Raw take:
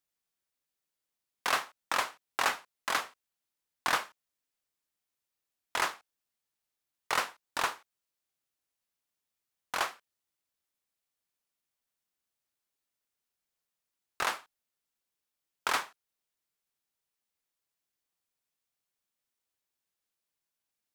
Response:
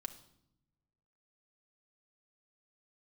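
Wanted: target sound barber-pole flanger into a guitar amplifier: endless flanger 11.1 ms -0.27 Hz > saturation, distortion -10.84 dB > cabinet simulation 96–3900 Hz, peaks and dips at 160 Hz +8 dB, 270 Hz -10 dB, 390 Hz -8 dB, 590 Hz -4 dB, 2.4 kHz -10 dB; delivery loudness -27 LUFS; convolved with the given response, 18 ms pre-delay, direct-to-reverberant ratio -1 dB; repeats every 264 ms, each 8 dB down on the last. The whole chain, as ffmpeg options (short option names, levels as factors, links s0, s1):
-filter_complex "[0:a]aecho=1:1:264|528|792|1056|1320:0.398|0.159|0.0637|0.0255|0.0102,asplit=2[s0][s1];[1:a]atrim=start_sample=2205,adelay=18[s2];[s1][s2]afir=irnorm=-1:irlink=0,volume=1.58[s3];[s0][s3]amix=inputs=2:normalize=0,asplit=2[s4][s5];[s5]adelay=11.1,afreqshift=-0.27[s6];[s4][s6]amix=inputs=2:normalize=1,asoftclip=threshold=0.0398,highpass=96,equalizer=f=160:t=q:w=4:g=8,equalizer=f=270:t=q:w=4:g=-10,equalizer=f=390:t=q:w=4:g=-8,equalizer=f=590:t=q:w=4:g=-4,equalizer=f=2400:t=q:w=4:g=-10,lowpass=f=3900:w=0.5412,lowpass=f=3900:w=1.3066,volume=4.22"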